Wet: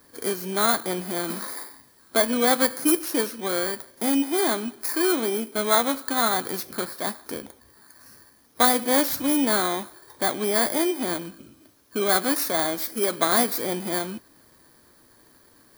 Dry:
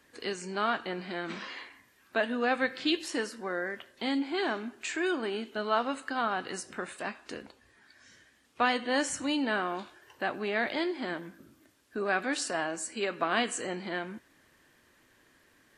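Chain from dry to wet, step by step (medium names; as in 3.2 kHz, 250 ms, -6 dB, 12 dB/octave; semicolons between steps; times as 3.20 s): bit-reversed sample order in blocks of 16 samples; trim +8 dB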